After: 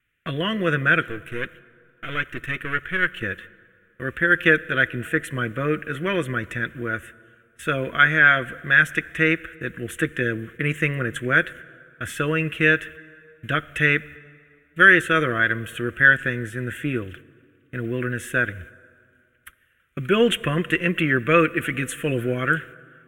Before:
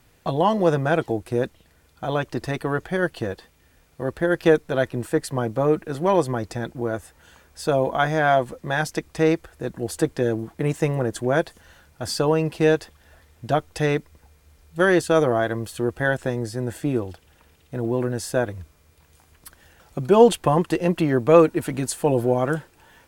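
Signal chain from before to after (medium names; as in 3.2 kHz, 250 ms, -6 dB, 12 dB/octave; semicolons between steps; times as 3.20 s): 1.09–3.23 s: partial rectifier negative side -12 dB; gate -42 dBFS, range -19 dB; high-order bell 2.1 kHz +13.5 dB; static phaser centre 2 kHz, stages 4; plate-style reverb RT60 2.3 s, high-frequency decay 0.65×, DRR 19.5 dB; trim -1 dB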